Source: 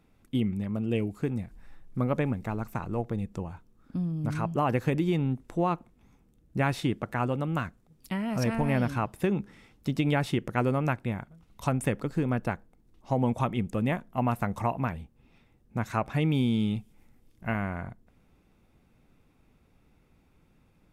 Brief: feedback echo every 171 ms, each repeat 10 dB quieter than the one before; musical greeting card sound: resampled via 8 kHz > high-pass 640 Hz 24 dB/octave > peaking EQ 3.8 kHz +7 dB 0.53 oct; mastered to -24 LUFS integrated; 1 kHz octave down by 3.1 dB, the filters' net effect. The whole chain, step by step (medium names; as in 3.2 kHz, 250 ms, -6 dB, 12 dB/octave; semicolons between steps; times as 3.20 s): peaking EQ 1 kHz -3.5 dB; feedback delay 171 ms, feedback 32%, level -10 dB; resampled via 8 kHz; high-pass 640 Hz 24 dB/octave; peaking EQ 3.8 kHz +7 dB 0.53 oct; trim +14 dB